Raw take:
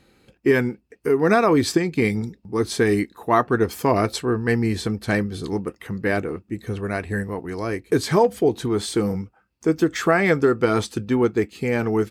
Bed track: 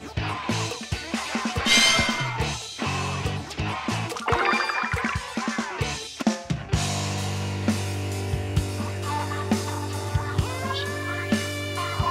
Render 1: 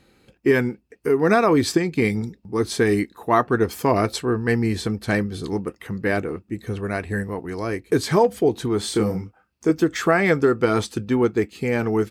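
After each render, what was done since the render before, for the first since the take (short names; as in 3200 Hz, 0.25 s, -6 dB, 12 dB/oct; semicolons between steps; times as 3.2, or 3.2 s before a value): 8.81–9.71 doubler 28 ms -5.5 dB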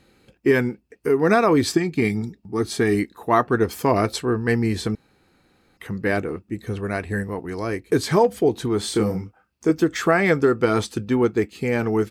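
1.74–2.95 notch comb 510 Hz; 4.95–5.77 room tone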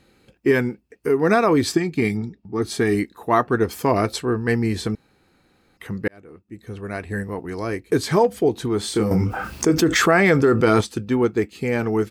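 2.17–2.62 air absorption 110 m; 6.08–7.37 fade in; 9.11–10.81 fast leveller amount 70%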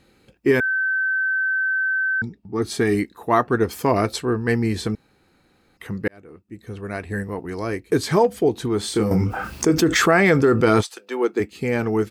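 0.6–2.22 bleep 1540 Hz -18.5 dBFS; 10.82–11.39 HPF 750 Hz -> 230 Hz 24 dB/oct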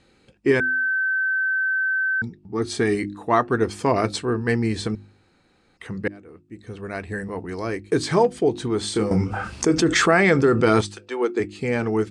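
Chebyshev low-pass 9100 Hz, order 4; de-hum 50.76 Hz, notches 7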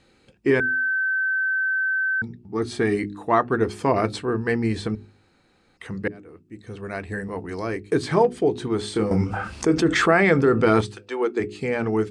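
notches 60/120/180/240/300/360/420 Hz; dynamic EQ 6700 Hz, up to -8 dB, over -44 dBFS, Q 0.76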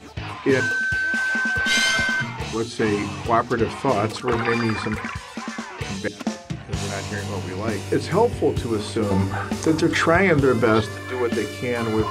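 add bed track -3.5 dB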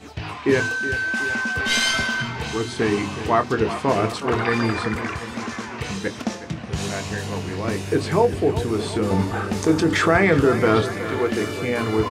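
doubler 25 ms -12 dB; dark delay 0.368 s, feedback 65%, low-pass 3800 Hz, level -12.5 dB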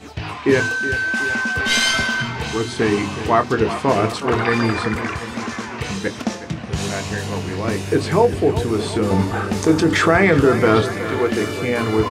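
gain +3 dB; limiter -3 dBFS, peak gain reduction 1.5 dB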